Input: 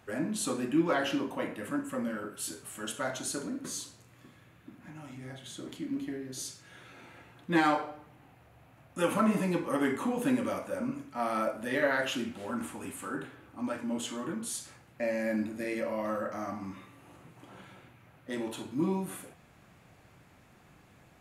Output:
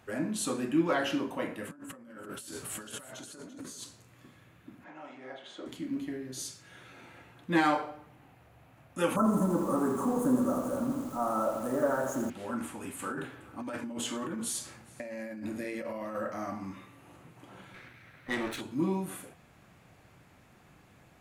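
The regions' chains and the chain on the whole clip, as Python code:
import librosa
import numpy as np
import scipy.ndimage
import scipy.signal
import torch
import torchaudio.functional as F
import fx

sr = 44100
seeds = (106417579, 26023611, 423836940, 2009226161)

y = fx.chain(x, sr, fx.over_compress(threshold_db=-46.0, ratio=-1.0),
    fx.echo_single(ms=339, db=-14.0), at=(1.71, 3.84))
y = fx.chain(y, sr, fx.bandpass_edges(low_hz=420.0, high_hz=3600.0),
    fx.peak_eq(hz=570.0, db=7.0, octaves=2.3), at=(4.84, 5.66))
y = fx.chain(y, sr, fx.zero_step(step_db=-39.0),
    fx.cheby1_bandstop(low_hz=1300.0, high_hz=6600.0, order=3),
    fx.echo_crushed(ms=84, feedback_pct=80, bits=8, wet_db=-9.5), at=(9.16, 12.3))
y = fx.chain(y, sr, fx.over_compress(threshold_db=-37.0, ratio=-1.0),
    fx.echo_single(ms=415, db=-23.5), at=(12.99, 16.16))
y = fx.chain(y, sr, fx.lower_of_two(delay_ms=0.51),
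    fx.peak_eq(hz=1800.0, db=9.5, octaves=2.5), at=(17.74, 18.61))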